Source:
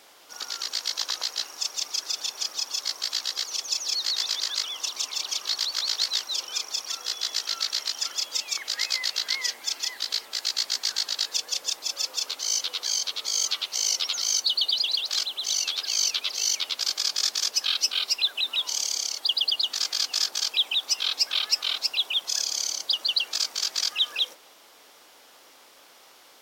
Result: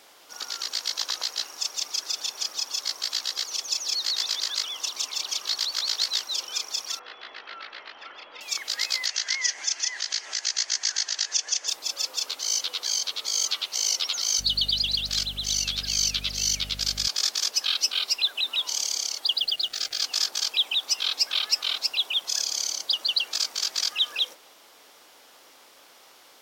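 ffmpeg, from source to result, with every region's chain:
-filter_complex "[0:a]asettb=1/sr,asplit=3[a][b][c];[a]atrim=end=6.994[d];[b]atrim=start=6.99:end=8.41,asetpts=PTS-STARTPTS,afade=t=in:d=0.004:c=qsin,afade=t=out:st=1.416:d=0.004:c=qsin,lowpass=f=2.5k:w=0.5412,lowpass=f=2.5k:w=1.3066,equalizer=f=120:t=o:w=1.5:g=-4.5[e];[c]atrim=start=8.406[f];[d][e]acrossfade=d=0.004:c1=hsin:c2=qsin[g];[g][f]acrossfade=d=0.004:c1=qsin:c2=hsin,asettb=1/sr,asplit=3[h][i][j];[h]atrim=end=9.064[k];[i]atrim=start=9.06:end=11.68,asetpts=PTS-STARTPTS,afade=t=in:d=0.004:c=qsin,afade=t=out:st=2.616:d=0.004:c=qsin,acompressor=mode=upward:threshold=-28dB:ratio=2.5:attack=3.2:release=140:knee=2.83:detection=peak,highpass=460,equalizer=f=500:t=q:w=4:g=-7,equalizer=f=880:t=q:w=4:g=-3,equalizer=f=1.2k:t=q:w=4:g=-4,equalizer=f=1.8k:t=q:w=4:g=6,equalizer=f=3.9k:t=q:w=4:g=-6,equalizer=f=6.3k:t=q:w=4:g=9,lowpass=f=7.1k:w=0.5412,lowpass=f=7.1k:w=1.3066[l];[j]atrim=start=11.676[m];[k][l]acrossfade=d=0.004:c1=hsin:c2=qsin[n];[n][m]acrossfade=d=0.004:c1=qsin:c2=hsin,asettb=1/sr,asplit=3[o][p][q];[o]atrim=end=14.394[r];[p]atrim=start=14.39:end=17.08,asetpts=PTS-STARTPTS,afade=t=in:d=0.004:c=qsin,afade=t=out:st=2.686:d=0.004:c=qsin,equalizer=f=980:w=2.4:g=-9,aeval=exprs='val(0)+0.0112*(sin(2*PI*50*n/s)+sin(2*PI*2*50*n/s)/2+sin(2*PI*3*50*n/s)/3+sin(2*PI*4*50*n/s)/4+sin(2*PI*5*50*n/s)/5)':c=same[s];[q]atrim=start=17.076[t];[r][s]acrossfade=d=0.004:c1=hsin:c2=qsin[u];[u][t]acrossfade=d=0.004:c1=qsin:c2=hsin,asettb=1/sr,asplit=3[v][w][x];[v]atrim=end=19.384[y];[w]atrim=start=19.38:end=20.02,asetpts=PTS-STARTPTS,afade=t=in:d=0.004:c=qsin,afade=t=out:st=0.636:d=0.004:c=qsin,asuperstop=centerf=1000:order=8:qfactor=2.5,highshelf=f=8k:g=-10,acrusher=bits=6:mix=0:aa=0.5[z];[x]atrim=start=20.016[aa];[y][z]acrossfade=d=0.004:c1=hsin:c2=qsin[ab];[ab][aa]acrossfade=d=0.004:c1=qsin:c2=hsin"

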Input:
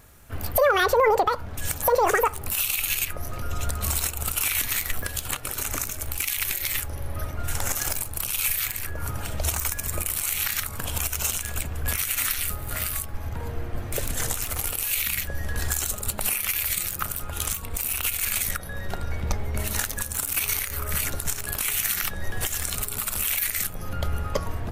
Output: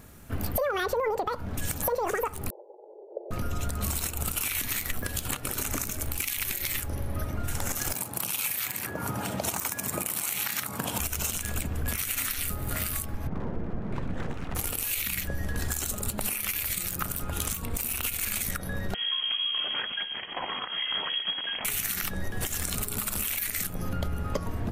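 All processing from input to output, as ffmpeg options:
-filter_complex "[0:a]asettb=1/sr,asplit=3[a][b][c];[a]atrim=end=2.504[d];[b]atrim=start=2.5:end=3.31,asetpts=PTS-STARTPTS,afade=t=in:d=0.004:c=qsin,afade=t=out:st=0.806:d=0.004:c=qsin,asuperpass=centerf=530:order=12:qfactor=1.2,aecho=1:1:2.1:0.75,atrim=end_sample=35721[e];[c]atrim=start=3.306[f];[d][e]acrossfade=d=0.004:c1=hsin:c2=qsin[g];[g][f]acrossfade=d=0.004:c1=qsin:c2=hsin,asettb=1/sr,asplit=3[h][i][j];[h]atrim=end=7.934[k];[i]atrim=start=7.93:end=11,asetpts=PTS-STARTPTS,afade=t=in:d=0.004:c=qsin,afade=t=out:st=3.066:d=0.004:c=qsin,highpass=f=120:w=0.5412,highpass=f=120:w=1.3066,equalizer=f=860:w=1.8:g=5.5[l];[j]atrim=start=10.996[m];[k][l]acrossfade=d=0.004:c1=hsin:c2=qsin[n];[n][m]acrossfade=d=0.004:c1=qsin:c2=hsin,asettb=1/sr,asplit=3[o][p][q];[o]atrim=end=13.274[r];[p]atrim=start=13.27:end=14.55,asetpts=PTS-STARTPTS,afade=t=in:d=0.004:c=qsin,afade=t=out:st=1.276:d=0.004:c=qsin,lowpass=1.5k,aeval=exprs='abs(val(0))':c=same[s];[q]atrim=start=14.546[t];[r][s]acrossfade=d=0.004:c1=hsin:c2=qsin[u];[u][t]acrossfade=d=0.004:c1=qsin:c2=hsin,asettb=1/sr,asplit=3[v][w][x];[v]atrim=end=18.944[y];[w]atrim=start=18.94:end=21.65,asetpts=PTS-STARTPTS,afade=t=in:d=0.004:c=qsin,afade=t=out:st=2.706:d=0.004:c=qsin,aeval=exprs='0.112*(abs(mod(val(0)/0.112+3,4)-2)-1)':c=same,lowpass=f=2.8k:t=q:w=0.5098,lowpass=f=2.8k:t=q:w=0.6013,lowpass=f=2.8k:t=q:w=0.9,lowpass=f=2.8k:t=q:w=2.563,afreqshift=-3300[z];[x]atrim=start=21.646[aa];[y][z]acrossfade=d=0.004:c1=hsin:c2=qsin[ab];[ab][aa]acrossfade=d=0.004:c1=qsin:c2=hsin,equalizer=f=220:t=o:w=1.6:g=8.5,acompressor=threshold=-26dB:ratio=5"

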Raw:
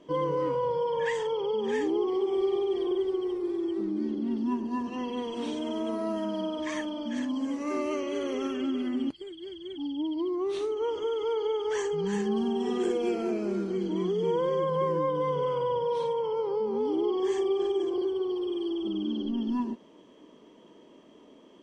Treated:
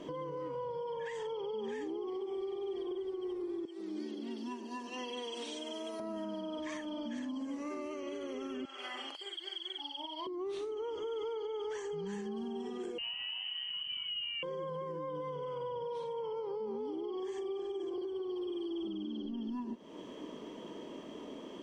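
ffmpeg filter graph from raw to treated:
-filter_complex "[0:a]asettb=1/sr,asplit=3[a][b][c];[a]atrim=end=3.654[d];[b]atrim=start=3.65:end=6,asetpts=PTS-STARTPTS,afade=t=in:d=0.004:c=qsin,afade=t=out:st=2.346:d=0.004:c=qsin,highpass=650,equalizer=f=1.1k:w=0.69:g=-11.5[e];[c]atrim=start=5.996[f];[d][e]acrossfade=d=0.004:c1=hsin:c2=qsin[g];[g][f]acrossfade=d=0.004:c1=qsin:c2=hsin,asettb=1/sr,asplit=3[h][i][j];[h]atrim=end=8.654[k];[i]atrim=start=8.65:end=10.27,asetpts=PTS-STARTPTS,afade=t=in:d=0.004:c=qsin,afade=t=out:st=1.616:d=0.004:c=qsin,highpass=f=670:w=0.5412,highpass=f=670:w=1.3066,asplit=2[l][m];[m]adelay=45,volume=-3dB[n];[l][n]amix=inputs=2:normalize=0,atrim=end_sample=71442[o];[j]atrim=start=10.266[p];[k][o]acrossfade=d=0.004:c1=hsin:c2=qsin[q];[q][p]acrossfade=d=0.004:c1=qsin:c2=hsin,asettb=1/sr,asplit=3[r][s][t];[r]atrim=end=12.984[u];[s]atrim=start=12.98:end=14.43,asetpts=PTS-STARTPTS,afade=t=in:d=0.004:c=qsin,afade=t=out:st=1.446:d=0.004:c=qsin,highpass=270,lowpass=f=2.8k:t=q:w=0.5098,lowpass=f=2.8k:t=q:w=0.6013,lowpass=f=2.8k:t=q:w=0.9,lowpass=f=2.8k:t=q:w=2.563,afreqshift=-3300,asplit=2[v][w];[w]adelay=32,volume=-14dB[x];[v][x]amix=inputs=2:normalize=0,atrim=end_sample=63945[y];[t]atrim=start=14.426[z];[u][y]acrossfade=d=0.004:c1=hsin:c2=qsin[aa];[aa][z]acrossfade=d=0.004:c1=qsin:c2=hsin,acompressor=threshold=-42dB:ratio=4,alimiter=level_in=16dB:limit=-24dB:level=0:latency=1:release=376,volume=-16dB,volume=8dB"

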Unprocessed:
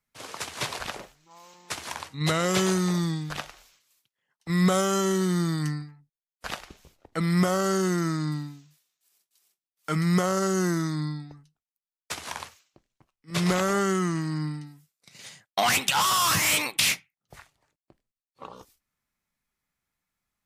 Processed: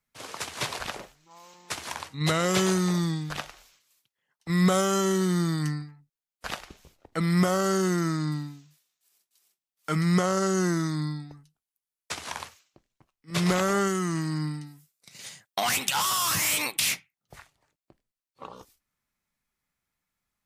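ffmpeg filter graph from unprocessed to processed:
-filter_complex "[0:a]asettb=1/sr,asplit=3[a][b][c];[a]atrim=end=10.004[d];[b]atrim=start=10:end=12.33,asetpts=PTS-STARTPTS,afade=t=in:d=0.004:c=qsin,afade=t=out:st=2.326:d=0.004:c=qsin,equalizer=f=11k:t=o:w=0.84:g=6.5,acrossover=split=8200[e][f];[f]acompressor=threshold=-55dB:ratio=4:attack=1:release=60[g];[e][g]amix=inputs=2:normalize=0[h];[c]atrim=start=12.326[i];[d][h]acrossfade=d=0.004:c1=hsin:c2=qsin[j];[j][i]acrossfade=d=0.004:c1=qsin:c2=hsin,asettb=1/sr,asplit=3[k][l][m];[k]atrim=end=13.874[n];[l]atrim=start=13.87:end=16.93,asetpts=PTS-STARTPTS,afade=t=in:d=0.004:c=qsin,afade=t=out:st=3.056:d=0.004:c=qsin,highshelf=f=6.1k:g=6.5,acompressor=threshold=-23dB:ratio=2.5:attack=3.2:release=140:knee=1:detection=peak[o];[m]atrim=start=16.926[p];[n][o]acrossfade=d=0.004:c1=hsin:c2=qsin[q];[q][p]acrossfade=d=0.004:c1=qsin:c2=hsin"

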